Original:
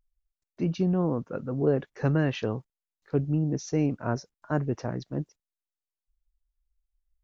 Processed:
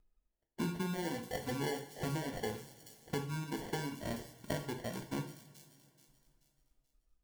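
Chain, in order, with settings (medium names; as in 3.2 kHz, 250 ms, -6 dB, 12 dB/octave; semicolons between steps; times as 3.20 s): reverb removal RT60 1.5 s; compression 6:1, threshold -39 dBFS, peak gain reduction 18 dB; sample-and-hold 35×; feedback echo behind a high-pass 431 ms, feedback 38%, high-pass 5.4 kHz, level -5 dB; two-slope reverb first 0.51 s, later 3 s, from -19 dB, DRR 4 dB; trim +2.5 dB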